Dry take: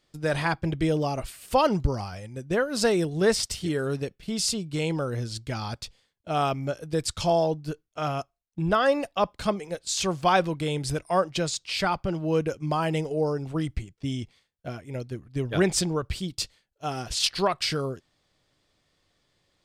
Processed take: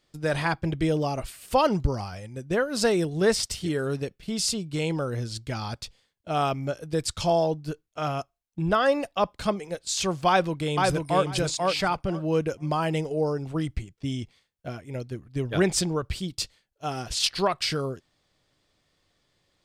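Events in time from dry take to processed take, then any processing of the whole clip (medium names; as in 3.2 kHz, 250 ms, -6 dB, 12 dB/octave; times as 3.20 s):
10.28–11.24 s: echo throw 490 ms, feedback 15%, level -2.5 dB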